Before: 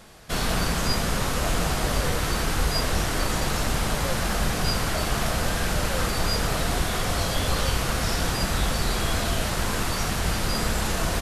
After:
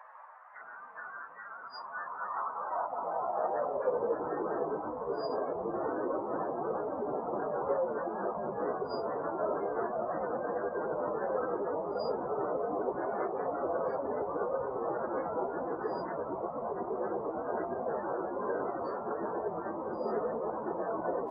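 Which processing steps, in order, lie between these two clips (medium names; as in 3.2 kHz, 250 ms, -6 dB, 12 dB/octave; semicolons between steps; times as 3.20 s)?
median filter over 15 samples; spectral gate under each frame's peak -20 dB strong; treble shelf 2 kHz -3.5 dB; band noise 520–1100 Hz -39 dBFS; plain phase-vocoder stretch 1.9×; high-pass sweep 1.8 kHz -> 400 Hz, 1.46–4.21 s; trim -2.5 dB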